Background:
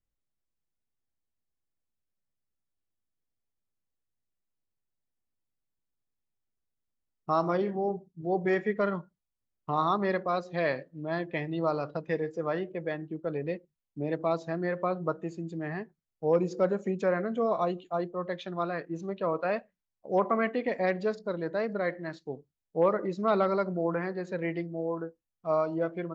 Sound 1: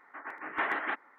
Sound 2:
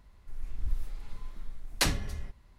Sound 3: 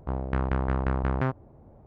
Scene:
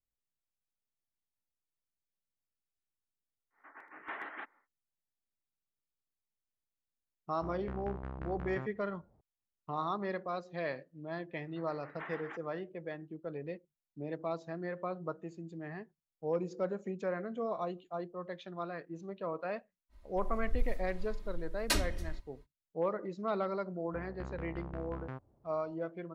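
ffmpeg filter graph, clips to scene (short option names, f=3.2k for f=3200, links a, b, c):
-filter_complex "[1:a]asplit=2[a][b];[3:a]asplit=2[c][d];[0:a]volume=-8.5dB[e];[2:a]aecho=1:1:3.2:0.92[f];[a]atrim=end=1.18,asetpts=PTS-STARTPTS,volume=-11.5dB,afade=t=in:d=0.1,afade=t=out:st=1.08:d=0.1,adelay=3500[g];[c]atrim=end=1.86,asetpts=PTS-STARTPTS,volume=-16dB,afade=t=in:d=0.004:c=hsin,afade=t=out:st=1.856:d=0.004:c=hsin,adelay=7350[h];[b]atrim=end=1.18,asetpts=PTS-STARTPTS,volume=-14.5dB,afade=t=in:d=0.004:c=hsin,afade=t=out:st=1.176:d=0.004:c=hsin,adelay=11420[i];[f]atrim=end=2.58,asetpts=PTS-STARTPTS,volume=-6.5dB,afade=t=in:d=0.05,afade=t=out:st=2.53:d=0.05,adelay=19890[j];[d]atrim=end=1.86,asetpts=PTS-STARTPTS,volume=-17dB,afade=t=in:d=0.004:c=hsin,afade=t=out:st=1.856:d=0.004:c=hsin,adelay=23870[k];[e][g][h][i][j][k]amix=inputs=6:normalize=0"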